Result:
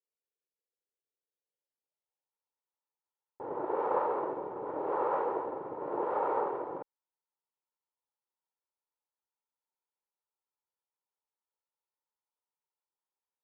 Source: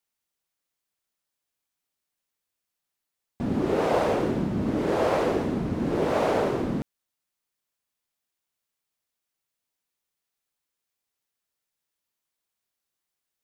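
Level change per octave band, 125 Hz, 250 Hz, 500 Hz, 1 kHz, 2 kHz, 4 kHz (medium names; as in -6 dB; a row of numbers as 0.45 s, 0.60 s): -26.5 dB, -16.5 dB, -8.0 dB, -2.5 dB, -13.0 dB, under -25 dB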